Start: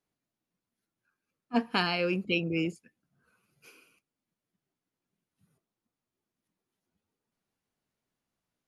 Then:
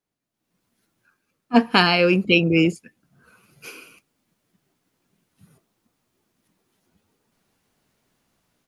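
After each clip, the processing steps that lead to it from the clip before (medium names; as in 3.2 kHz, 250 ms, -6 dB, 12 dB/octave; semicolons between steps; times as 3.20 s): level rider gain up to 16.5 dB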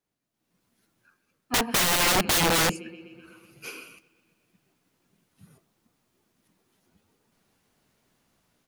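feedback echo behind a low-pass 125 ms, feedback 69%, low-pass 3.9 kHz, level -24 dB; integer overflow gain 17 dB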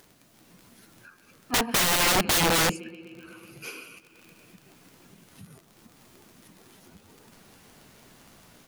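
upward compressor, threshold -39 dBFS; crackle 32 per s -39 dBFS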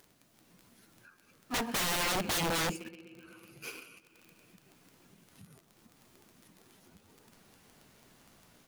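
in parallel at -6.5 dB: bit crusher 6-bit; on the sum: overload inside the chain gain 22 dB; trim -7.5 dB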